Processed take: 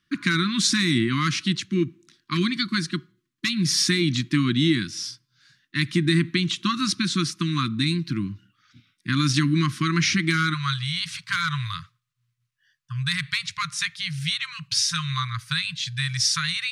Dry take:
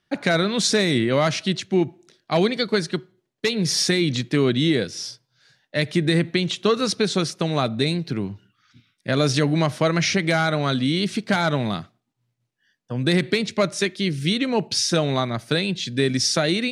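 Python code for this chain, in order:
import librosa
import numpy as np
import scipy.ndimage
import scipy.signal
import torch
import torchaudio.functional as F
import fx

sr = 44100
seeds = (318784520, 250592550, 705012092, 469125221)

y = fx.brickwall_bandstop(x, sr, low_hz=fx.steps((0.0, 360.0), (10.53, 160.0)), high_hz=1000.0)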